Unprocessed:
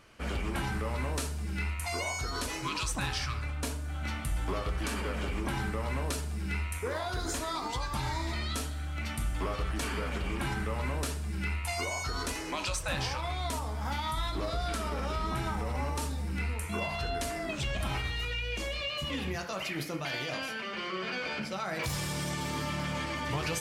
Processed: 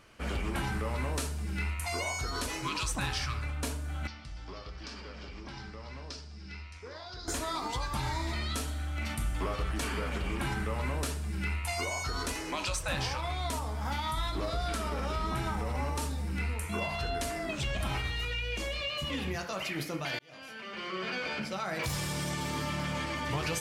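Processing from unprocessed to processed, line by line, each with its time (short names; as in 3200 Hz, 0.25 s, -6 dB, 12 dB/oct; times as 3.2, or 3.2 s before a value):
4.07–7.28 ladder low-pass 5500 Hz, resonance 70%
8.63–9.15 doubler 44 ms -7 dB
20.19–21.04 fade in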